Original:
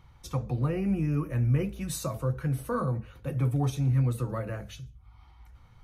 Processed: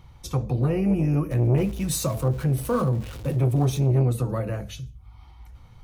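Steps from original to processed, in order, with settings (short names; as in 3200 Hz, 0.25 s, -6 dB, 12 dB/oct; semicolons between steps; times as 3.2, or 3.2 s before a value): 1.31–3.85 zero-crossing step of -41.5 dBFS; bell 1500 Hz -5.5 dB 1.1 oct; core saturation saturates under 290 Hz; gain +7 dB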